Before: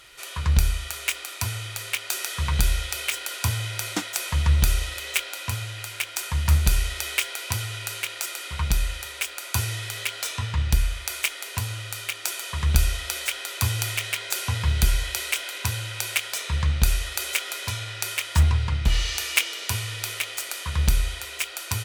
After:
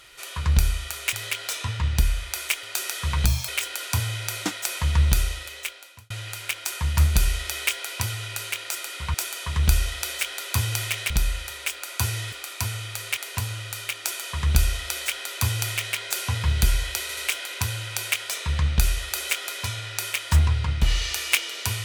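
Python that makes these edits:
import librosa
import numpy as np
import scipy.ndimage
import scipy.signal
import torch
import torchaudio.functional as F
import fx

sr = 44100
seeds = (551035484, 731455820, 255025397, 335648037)

y = fx.edit(x, sr, fx.swap(start_s=1.13, length_s=0.85, other_s=9.87, other_length_s=1.5),
    fx.speed_span(start_s=2.61, length_s=0.38, speed=1.71),
    fx.fade_out_span(start_s=4.6, length_s=1.01),
    fx.duplicate(start_s=12.21, length_s=1.96, to_s=8.65),
    fx.stutter(start_s=15.21, slice_s=0.08, count=3), tone=tone)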